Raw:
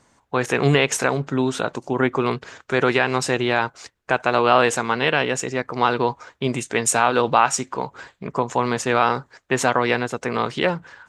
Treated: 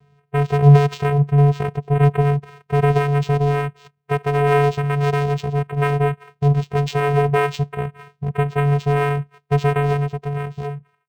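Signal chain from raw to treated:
fade-out on the ending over 1.29 s
channel vocoder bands 4, square 143 Hz
linearly interpolated sample-rate reduction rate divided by 4×
level +4 dB

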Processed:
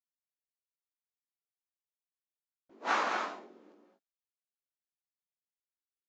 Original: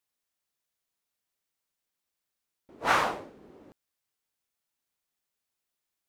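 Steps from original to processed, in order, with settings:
Chebyshev band-pass filter 200–7,100 Hz, order 5
noise gate with hold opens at −46 dBFS
chorus effect 0.74 Hz, delay 18 ms, depth 4 ms
reverb whose tail is shaped and stops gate 260 ms rising, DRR 3 dB
level −3 dB

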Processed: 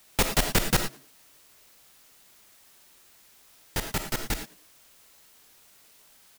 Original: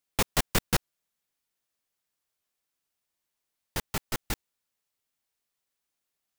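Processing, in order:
notch filter 1,100 Hz
in parallel at −10 dB: bit-depth reduction 8 bits, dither triangular
on the sum: echo with shifted repeats 100 ms, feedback 32%, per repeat +130 Hz, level −24 dB
convolution reverb, pre-delay 5 ms, DRR 5.5 dB

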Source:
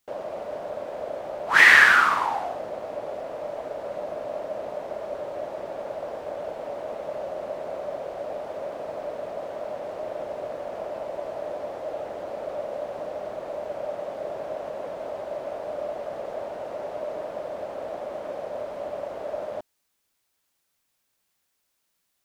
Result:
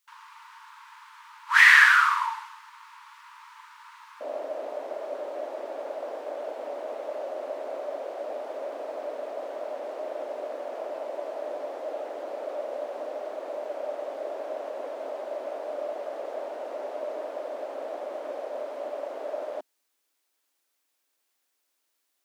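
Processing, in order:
linear-phase brick-wall high-pass 870 Hz, from 0:04.20 240 Hz
level −1.5 dB

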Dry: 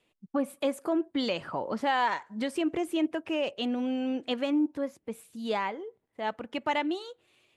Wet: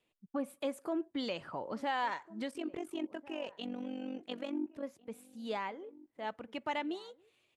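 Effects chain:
0:02.51–0:04.83: amplitude modulation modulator 47 Hz, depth 65%
slap from a distant wall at 240 metres, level −20 dB
level −7.5 dB

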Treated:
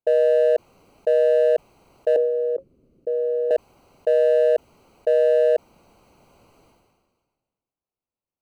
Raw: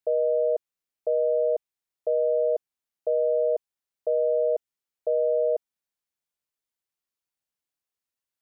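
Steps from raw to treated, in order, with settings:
adaptive Wiener filter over 25 samples
0:02.16–0:03.51: drawn EQ curve 360 Hz 0 dB, 540 Hz −5 dB, 800 Hz −27 dB, 1,200 Hz −20 dB
level that may fall only so fast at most 36 dB per second
level +7 dB

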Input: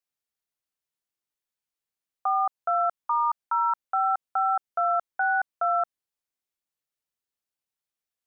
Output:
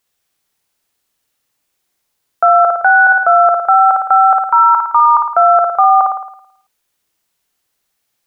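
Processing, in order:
played backwards from end to start
flutter between parallel walls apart 9.4 metres, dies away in 0.68 s
on a send at −23 dB: convolution reverb RT60 0.40 s, pre-delay 3 ms
on the sum: boost into a limiter +19.5 dB
level −1 dB

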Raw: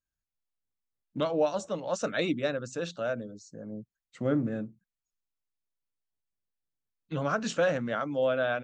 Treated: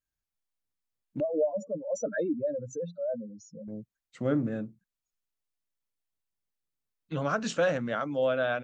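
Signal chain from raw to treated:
0:01.20–0:03.68: expanding power law on the bin magnitudes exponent 3.3

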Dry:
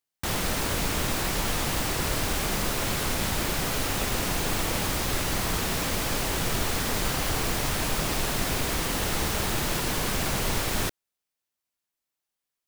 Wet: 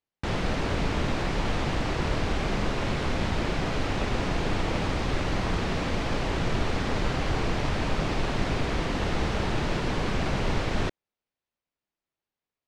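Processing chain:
high-shelf EQ 6,500 Hz −9.5 dB
in parallel at −9 dB: sample-rate reduction 1,900 Hz
on the sum: high-frequency loss of the air 110 metres

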